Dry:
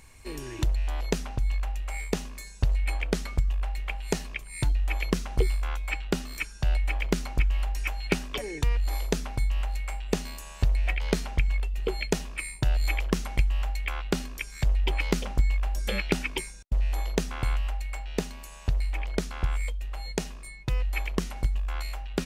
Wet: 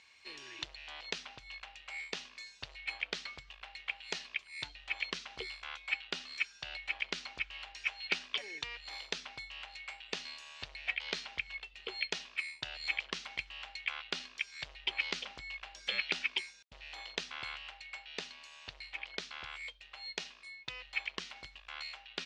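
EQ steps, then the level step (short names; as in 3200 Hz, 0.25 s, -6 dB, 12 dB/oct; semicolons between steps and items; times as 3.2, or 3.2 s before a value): band-pass 3800 Hz, Q 1.3; air absorption 130 m; +4.5 dB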